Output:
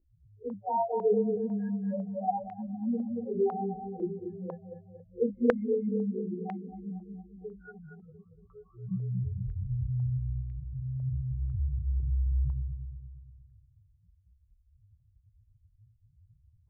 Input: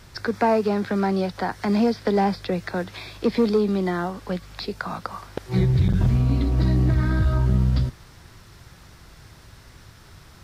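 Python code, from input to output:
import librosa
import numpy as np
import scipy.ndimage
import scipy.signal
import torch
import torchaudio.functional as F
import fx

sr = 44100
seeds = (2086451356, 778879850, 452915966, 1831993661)

p1 = fx.env_lowpass(x, sr, base_hz=320.0, full_db=-16.5)
p2 = fx.spec_topn(p1, sr, count=1)
p3 = fx.small_body(p2, sr, hz=(280.0, 550.0), ring_ms=30, db=9)
p4 = fx.vibrato(p3, sr, rate_hz=0.31, depth_cents=52.0)
p5 = fx.stretch_vocoder_free(p4, sr, factor=1.6)
p6 = p5 + fx.echo_feedback(p5, sr, ms=232, feedback_pct=48, wet_db=-6.5, dry=0)
p7 = fx.filter_held_lowpass(p6, sr, hz=2.0, low_hz=360.0, high_hz=2100.0)
y = p7 * librosa.db_to_amplitude(-5.0)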